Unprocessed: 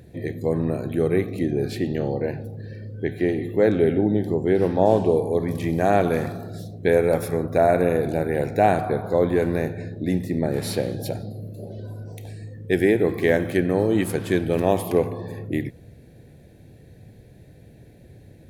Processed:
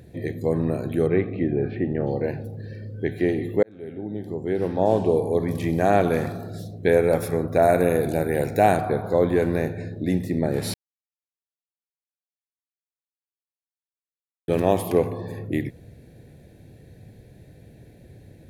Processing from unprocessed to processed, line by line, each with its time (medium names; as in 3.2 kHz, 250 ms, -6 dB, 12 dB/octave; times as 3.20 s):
1.06–2.06 s: low-pass 3.5 kHz -> 1.9 kHz 24 dB/octave
3.63–5.29 s: fade in
7.62–8.77 s: treble shelf 6.7 kHz +10.5 dB
10.74–14.48 s: mute